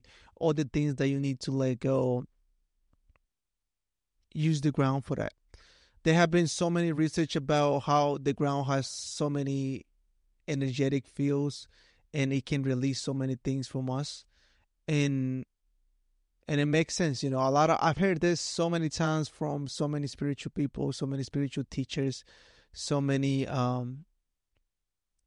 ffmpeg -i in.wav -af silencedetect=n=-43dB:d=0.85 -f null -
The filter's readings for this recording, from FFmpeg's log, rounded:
silence_start: 2.25
silence_end: 4.32 | silence_duration: 2.07
silence_start: 15.43
silence_end: 16.49 | silence_duration: 1.06
silence_start: 24.00
silence_end: 25.26 | silence_duration: 1.26